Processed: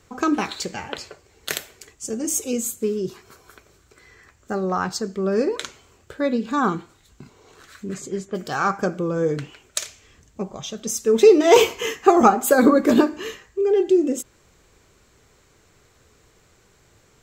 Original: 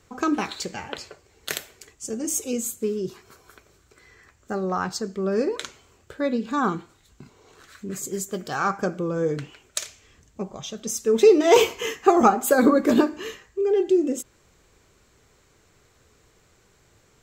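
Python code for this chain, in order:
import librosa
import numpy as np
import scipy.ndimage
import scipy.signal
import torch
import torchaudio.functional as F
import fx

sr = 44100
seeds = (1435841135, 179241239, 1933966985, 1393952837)

y = fx.lowpass(x, sr, hz=fx.line((7.93, 6400.0), (8.34, 2500.0)), slope=12, at=(7.93, 8.34), fade=0.02)
y = F.gain(torch.from_numpy(y), 2.5).numpy()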